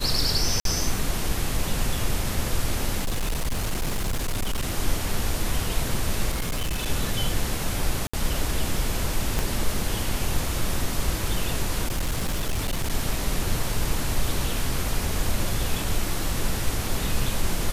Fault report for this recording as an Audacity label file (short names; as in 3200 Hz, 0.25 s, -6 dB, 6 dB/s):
0.600000	0.650000	gap 52 ms
2.990000	4.740000	clipped -21.5 dBFS
6.320000	6.880000	clipped -22.5 dBFS
8.070000	8.130000	gap 65 ms
9.390000	9.390000	pop
11.860000	12.930000	clipped -21 dBFS